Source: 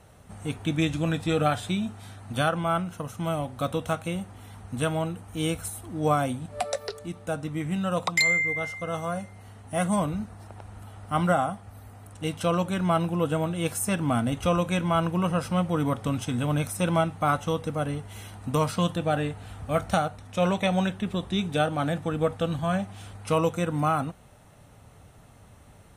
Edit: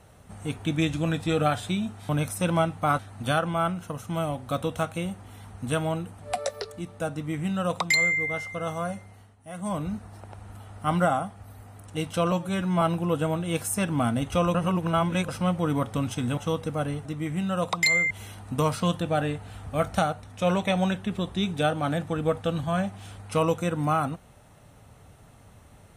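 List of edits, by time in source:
0:05.29–0:06.46: remove
0:07.40–0:08.45: duplicate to 0:18.06
0:09.27–0:10.18: duck −13.5 dB, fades 0.37 s
0:12.59–0:12.92: time-stretch 1.5×
0:14.65–0:15.39: reverse
0:16.48–0:17.38: move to 0:02.09

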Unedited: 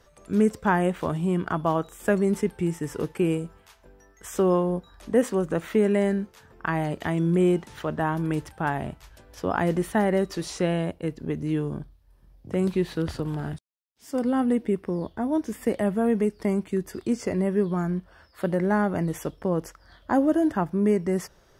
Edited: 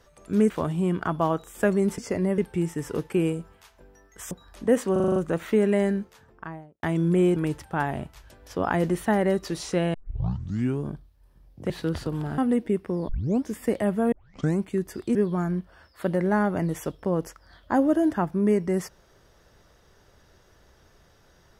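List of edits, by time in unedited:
0:00.50–0:00.95: remove
0:04.36–0:04.77: remove
0:05.38: stutter 0.04 s, 7 plays
0:06.19–0:07.05: fade out and dull
0:07.58–0:08.23: remove
0:10.81: tape start 0.88 s
0:12.57–0:12.83: remove
0:13.51–0:14.37: remove
0:15.08: tape start 0.36 s
0:16.11: tape start 0.46 s
0:17.14–0:17.54: move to 0:02.43

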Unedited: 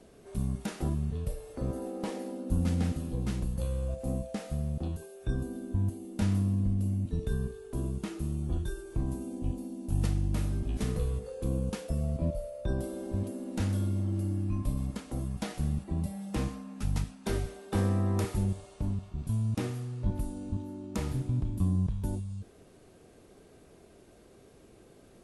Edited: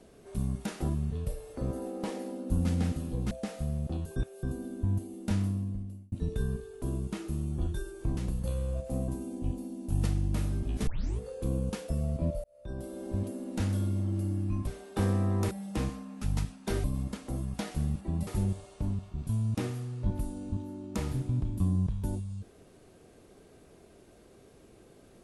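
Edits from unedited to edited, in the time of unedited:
0:03.31–0:04.22: move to 0:09.08
0:05.07–0:05.34: reverse
0:06.16–0:07.03: fade out
0:10.87: tape start 0.32 s
0:12.44–0:13.14: fade in
0:14.67–0:16.10: swap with 0:17.43–0:18.27

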